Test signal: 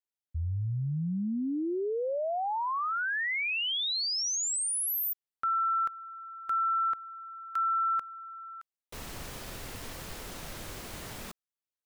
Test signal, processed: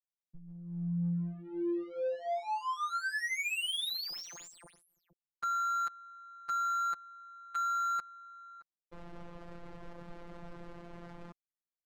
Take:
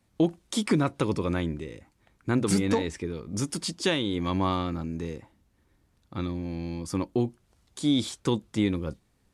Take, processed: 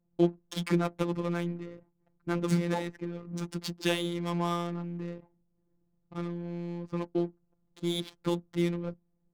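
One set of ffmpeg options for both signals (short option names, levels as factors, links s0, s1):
-af "adynamicsmooth=sensitivity=8:basefreq=520,afftfilt=real='hypot(re,im)*cos(PI*b)':imag='0':win_size=1024:overlap=0.75"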